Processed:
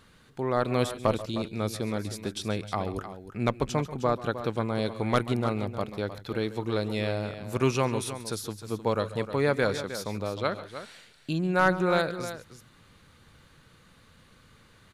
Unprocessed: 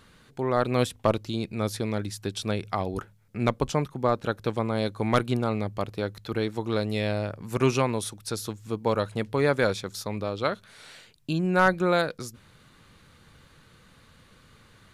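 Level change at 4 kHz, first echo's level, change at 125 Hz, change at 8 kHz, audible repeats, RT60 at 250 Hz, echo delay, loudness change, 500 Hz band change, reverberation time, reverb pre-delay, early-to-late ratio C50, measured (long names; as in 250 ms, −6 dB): −1.5 dB, −18.0 dB, −1.5 dB, −1.5 dB, 2, no reverb audible, 135 ms, −2.0 dB, −1.5 dB, no reverb audible, no reverb audible, no reverb audible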